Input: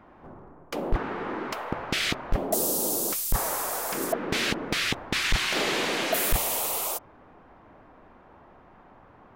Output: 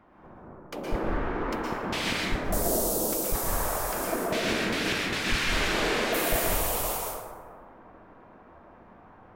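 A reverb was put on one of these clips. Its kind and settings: plate-style reverb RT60 1.9 s, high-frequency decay 0.35×, pre-delay 105 ms, DRR -4.5 dB; trim -5.5 dB

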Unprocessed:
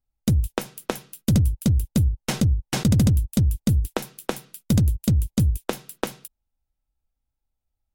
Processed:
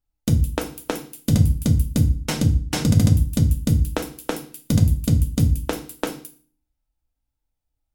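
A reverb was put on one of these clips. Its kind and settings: FDN reverb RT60 0.43 s, low-frequency decay 1.4×, high-frequency decay 0.9×, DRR 4 dB

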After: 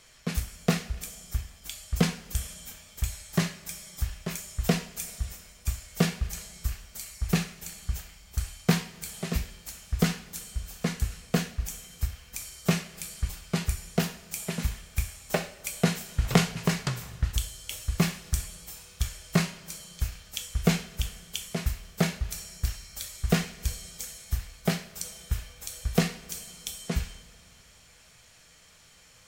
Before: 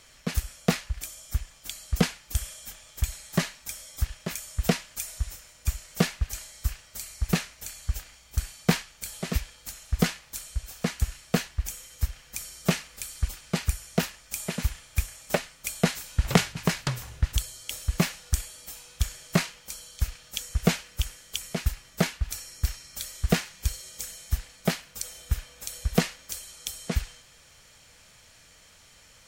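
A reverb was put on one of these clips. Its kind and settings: two-slope reverb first 0.36 s, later 2.4 s, from -19 dB, DRR 5.5 dB; trim -2.5 dB

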